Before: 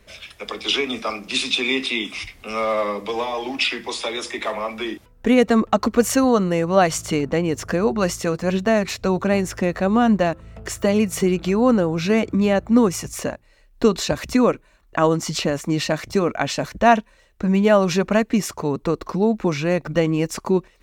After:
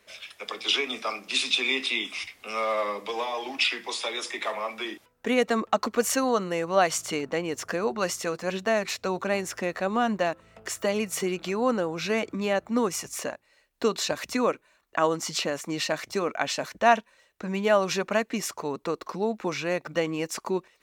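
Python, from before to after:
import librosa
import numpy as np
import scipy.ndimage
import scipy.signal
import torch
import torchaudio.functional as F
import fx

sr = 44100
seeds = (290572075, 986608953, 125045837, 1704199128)

y = fx.highpass(x, sr, hz=590.0, slope=6)
y = y * librosa.db_to_amplitude(-3.0)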